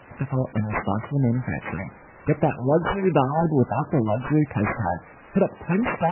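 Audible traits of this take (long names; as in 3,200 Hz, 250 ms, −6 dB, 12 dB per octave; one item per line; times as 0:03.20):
a quantiser's noise floor 8 bits, dither triangular
phaser sweep stages 6, 2.6 Hz, lowest notch 320–3,800 Hz
aliases and images of a low sample rate 4,100 Hz, jitter 0%
MP3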